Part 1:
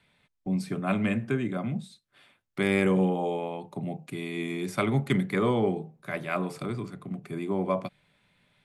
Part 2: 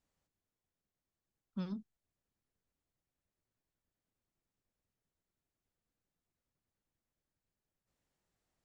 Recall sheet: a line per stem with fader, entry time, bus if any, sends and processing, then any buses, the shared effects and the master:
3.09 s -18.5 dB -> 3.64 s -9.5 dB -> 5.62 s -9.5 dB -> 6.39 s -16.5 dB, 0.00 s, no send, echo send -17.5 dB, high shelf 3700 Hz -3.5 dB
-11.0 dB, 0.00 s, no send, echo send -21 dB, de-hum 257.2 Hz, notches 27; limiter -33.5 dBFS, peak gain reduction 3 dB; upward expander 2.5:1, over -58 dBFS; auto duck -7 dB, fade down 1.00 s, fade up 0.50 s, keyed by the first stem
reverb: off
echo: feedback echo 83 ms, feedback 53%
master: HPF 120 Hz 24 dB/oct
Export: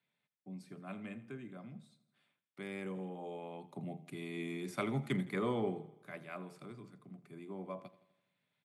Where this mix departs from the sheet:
stem 1: missing high shelf 3700 Hz -3.5 dB; stem 2 -11.0 dB -> -18.5 dB

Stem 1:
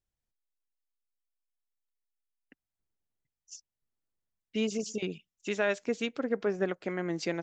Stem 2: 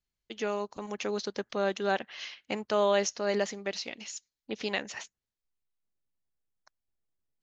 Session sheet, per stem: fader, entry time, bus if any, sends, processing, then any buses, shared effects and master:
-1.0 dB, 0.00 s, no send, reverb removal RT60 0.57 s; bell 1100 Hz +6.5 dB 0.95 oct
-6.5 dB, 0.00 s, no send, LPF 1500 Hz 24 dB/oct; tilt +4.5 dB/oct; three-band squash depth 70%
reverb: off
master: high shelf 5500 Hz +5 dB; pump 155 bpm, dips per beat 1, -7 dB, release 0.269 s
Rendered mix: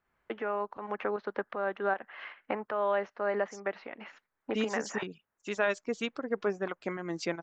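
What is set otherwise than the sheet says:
stem 2 -6.5 dB -> +4.0 dB; master: missing high shelf 5500 Hz +5 dB

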